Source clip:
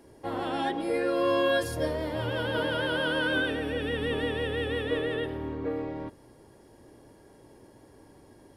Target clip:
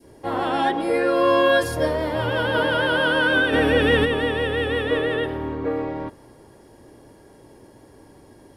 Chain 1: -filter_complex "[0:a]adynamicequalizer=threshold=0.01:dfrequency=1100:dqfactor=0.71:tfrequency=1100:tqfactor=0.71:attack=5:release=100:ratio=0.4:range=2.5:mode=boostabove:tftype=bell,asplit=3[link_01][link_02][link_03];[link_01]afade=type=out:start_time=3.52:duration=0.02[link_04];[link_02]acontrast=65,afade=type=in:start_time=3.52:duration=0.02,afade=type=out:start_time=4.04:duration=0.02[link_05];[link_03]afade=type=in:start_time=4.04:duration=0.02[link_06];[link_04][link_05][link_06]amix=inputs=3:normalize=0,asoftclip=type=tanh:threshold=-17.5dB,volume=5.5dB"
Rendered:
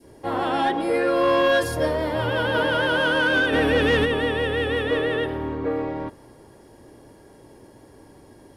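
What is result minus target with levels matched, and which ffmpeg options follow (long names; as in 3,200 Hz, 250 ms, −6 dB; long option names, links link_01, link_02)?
soft clipping: distortion +15 dB
-filter_complex "[0:a]adynamicequalizer=threshold=0.01:dfrequency=1100:dqfactor=0.71:tfrequency=1100:tqfactor=0.71:attack=5:release=100:ratio=0.4:range=2.5:mode=boostabove:tftype=bell,asplit=3[link_01][link_02][link_03];[link_01]afade=type=out:start_time=3.52:duration=0.02[link_04];[link_02]acontrast=65,afade=type=in:start_time=3.52:duration=0.02,afade=type=out:start_time=4.04:duration=0.02[link_05];[link_03]afade=type=in:start_time=4.04:duration=0.02[link_06];[link_04][link_05][link_06]amix=inputs=3:normalize=0,asoftclip=type=tanh:threshold=-8.5dB,volume=5.5dB"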